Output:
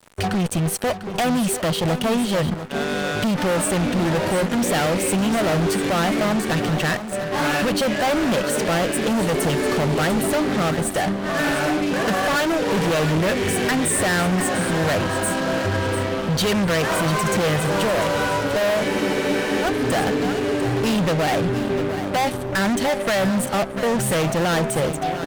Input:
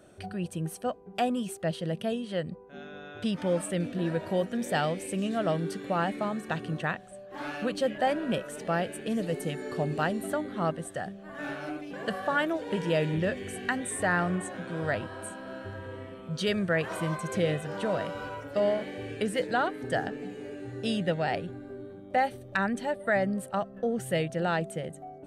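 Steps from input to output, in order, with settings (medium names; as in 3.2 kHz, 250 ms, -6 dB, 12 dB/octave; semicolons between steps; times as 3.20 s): in parallel at -0.5 dB: compression, threshold -38 dBFS, peak gain reduction 16 dB; on the sum: fuzz box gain 37 dB, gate -44 dBFS; feedback delay 697 ms, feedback 18%, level -11 dB; spectral freeze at 18.89 s, 0.74 s; trim -5 dB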